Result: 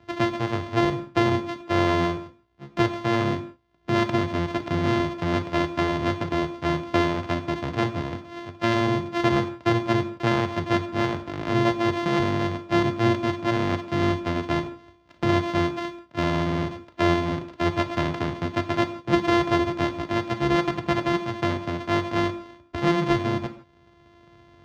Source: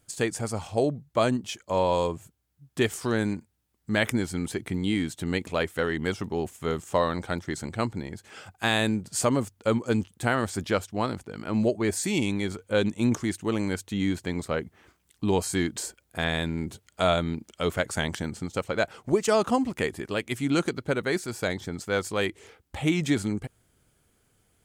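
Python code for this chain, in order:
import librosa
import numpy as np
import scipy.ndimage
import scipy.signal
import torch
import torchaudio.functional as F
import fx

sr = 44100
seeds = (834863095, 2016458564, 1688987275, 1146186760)

y = np.r_[np.sort(x[:len(x) // 128 * 128].reshape(-1, 128), axis=1).ravel(), x[len(x) // 128 * 128:]]
y = scipy.signal.sosfilt(scipy.signal.butter(2, 77.0, 'highpass', fs=sr, output='sos'), y)
y = fx.air_absorb(y, sr, metres=210.0)
y = fx.rev_gated(y, sr, seeds[0], gate_ms=190, shape='falling', drr_db=7.5)
y = fx.band_squash(y, sr, depth_pct=40)
y = y * librosa.db_to_amplitude(3.5)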